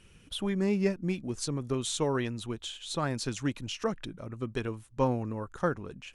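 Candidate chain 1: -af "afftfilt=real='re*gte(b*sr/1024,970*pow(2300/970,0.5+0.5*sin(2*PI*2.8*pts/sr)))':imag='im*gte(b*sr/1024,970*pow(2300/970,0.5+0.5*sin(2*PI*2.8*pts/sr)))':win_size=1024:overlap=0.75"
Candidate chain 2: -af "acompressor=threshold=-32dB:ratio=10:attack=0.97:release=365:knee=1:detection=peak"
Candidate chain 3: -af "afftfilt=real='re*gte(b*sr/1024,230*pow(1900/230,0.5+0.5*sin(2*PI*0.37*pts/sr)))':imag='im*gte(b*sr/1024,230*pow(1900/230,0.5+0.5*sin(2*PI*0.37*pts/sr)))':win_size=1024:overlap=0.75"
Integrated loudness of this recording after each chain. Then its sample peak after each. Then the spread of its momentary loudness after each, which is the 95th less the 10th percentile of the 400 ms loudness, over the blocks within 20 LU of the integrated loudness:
-40.0, -40.5, -37.0 LUFS; -21.0, -27.5, -16.5 dBFS; 17, 5, 14 LU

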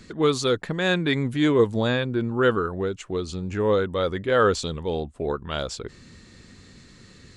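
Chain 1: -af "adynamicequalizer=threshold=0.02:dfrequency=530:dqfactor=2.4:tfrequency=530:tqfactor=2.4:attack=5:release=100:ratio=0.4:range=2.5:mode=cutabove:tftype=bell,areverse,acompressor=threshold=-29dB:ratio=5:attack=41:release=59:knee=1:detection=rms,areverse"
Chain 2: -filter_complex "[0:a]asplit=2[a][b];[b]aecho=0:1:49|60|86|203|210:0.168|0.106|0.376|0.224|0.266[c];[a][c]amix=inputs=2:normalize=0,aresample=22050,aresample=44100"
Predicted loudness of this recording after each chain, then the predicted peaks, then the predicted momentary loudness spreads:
-30.0, -23.0 LUFS; -16.5, -6.0 dBFS; 20, 10 LU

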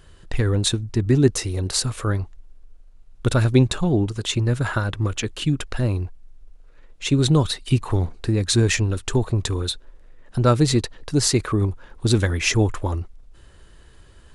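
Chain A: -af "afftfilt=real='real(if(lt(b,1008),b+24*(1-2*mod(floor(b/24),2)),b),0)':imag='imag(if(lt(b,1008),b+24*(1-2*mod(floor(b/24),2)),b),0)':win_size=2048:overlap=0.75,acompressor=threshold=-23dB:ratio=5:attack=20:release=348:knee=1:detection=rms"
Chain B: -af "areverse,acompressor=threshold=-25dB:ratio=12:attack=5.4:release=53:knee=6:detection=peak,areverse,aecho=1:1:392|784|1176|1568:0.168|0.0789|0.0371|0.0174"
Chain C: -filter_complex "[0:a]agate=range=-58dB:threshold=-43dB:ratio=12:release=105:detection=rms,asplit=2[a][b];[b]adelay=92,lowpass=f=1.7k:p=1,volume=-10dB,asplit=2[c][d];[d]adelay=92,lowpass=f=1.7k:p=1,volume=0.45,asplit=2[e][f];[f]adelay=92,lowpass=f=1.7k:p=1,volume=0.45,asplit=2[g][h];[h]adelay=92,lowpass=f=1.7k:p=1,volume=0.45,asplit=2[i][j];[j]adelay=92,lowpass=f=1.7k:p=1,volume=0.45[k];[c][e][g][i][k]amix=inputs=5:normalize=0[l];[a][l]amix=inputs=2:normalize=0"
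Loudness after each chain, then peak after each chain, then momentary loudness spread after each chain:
-28.0, -29.5, -21.5 LUFS; -10.5, -11.5, -3.5 dBFS; 17, 17, 10 LU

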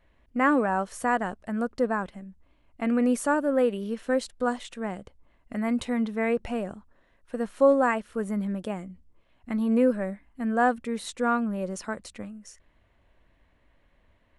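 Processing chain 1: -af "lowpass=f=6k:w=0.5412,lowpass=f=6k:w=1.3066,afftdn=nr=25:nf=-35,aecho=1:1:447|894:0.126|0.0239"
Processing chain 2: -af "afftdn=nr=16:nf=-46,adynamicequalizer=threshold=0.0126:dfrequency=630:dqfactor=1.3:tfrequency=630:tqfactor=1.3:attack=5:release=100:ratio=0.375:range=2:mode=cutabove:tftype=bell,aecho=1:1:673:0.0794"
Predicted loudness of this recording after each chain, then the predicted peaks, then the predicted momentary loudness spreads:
-27.0, -27.5 LUFS; -9.0, -9.0 dBFS; 15, 15 LU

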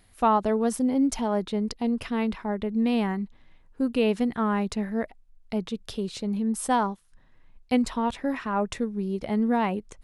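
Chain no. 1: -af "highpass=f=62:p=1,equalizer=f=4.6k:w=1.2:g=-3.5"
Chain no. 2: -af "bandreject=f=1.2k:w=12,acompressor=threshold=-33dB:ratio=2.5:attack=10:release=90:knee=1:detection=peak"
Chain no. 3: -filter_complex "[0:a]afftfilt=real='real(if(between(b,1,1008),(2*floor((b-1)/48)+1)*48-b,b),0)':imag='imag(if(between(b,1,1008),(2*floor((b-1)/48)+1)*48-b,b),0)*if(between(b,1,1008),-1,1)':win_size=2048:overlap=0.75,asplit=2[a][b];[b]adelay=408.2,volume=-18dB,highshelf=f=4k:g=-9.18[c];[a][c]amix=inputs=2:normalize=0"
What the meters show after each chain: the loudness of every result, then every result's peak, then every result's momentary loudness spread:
-27.0, -33.5, -26.5 LUFS; -11.0, -17.0, -10.0 dBFS; 8, 6, 9 LU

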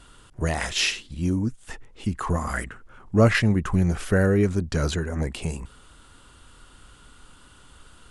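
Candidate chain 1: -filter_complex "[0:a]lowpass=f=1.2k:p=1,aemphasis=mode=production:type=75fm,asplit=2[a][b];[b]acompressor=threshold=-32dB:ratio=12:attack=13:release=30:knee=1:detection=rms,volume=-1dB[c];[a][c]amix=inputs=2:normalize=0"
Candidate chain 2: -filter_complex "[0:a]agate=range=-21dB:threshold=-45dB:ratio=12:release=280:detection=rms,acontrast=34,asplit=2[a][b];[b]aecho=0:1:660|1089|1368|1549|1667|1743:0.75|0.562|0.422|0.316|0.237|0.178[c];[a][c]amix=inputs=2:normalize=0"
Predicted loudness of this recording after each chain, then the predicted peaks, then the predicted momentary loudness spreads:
-24.0, -17.0 LUFS; -6.5, -2.0 dBFS; 16, 12 LU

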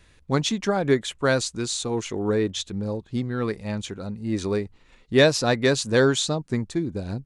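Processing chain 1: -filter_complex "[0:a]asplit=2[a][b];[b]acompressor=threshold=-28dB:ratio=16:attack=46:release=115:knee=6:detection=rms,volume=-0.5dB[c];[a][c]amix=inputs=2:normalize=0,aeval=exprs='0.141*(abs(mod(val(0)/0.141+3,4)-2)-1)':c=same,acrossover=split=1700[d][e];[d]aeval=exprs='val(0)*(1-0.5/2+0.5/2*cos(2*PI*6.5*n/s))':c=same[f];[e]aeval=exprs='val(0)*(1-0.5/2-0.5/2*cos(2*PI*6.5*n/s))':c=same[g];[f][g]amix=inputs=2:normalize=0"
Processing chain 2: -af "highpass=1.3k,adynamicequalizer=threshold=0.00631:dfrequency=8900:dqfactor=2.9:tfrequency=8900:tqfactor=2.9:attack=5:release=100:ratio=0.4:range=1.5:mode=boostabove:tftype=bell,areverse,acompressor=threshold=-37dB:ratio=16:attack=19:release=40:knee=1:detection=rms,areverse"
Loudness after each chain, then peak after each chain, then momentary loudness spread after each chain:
-27.0, -39.0 LUFS; -14.0, -23.5 dBFS; 5, 9 LU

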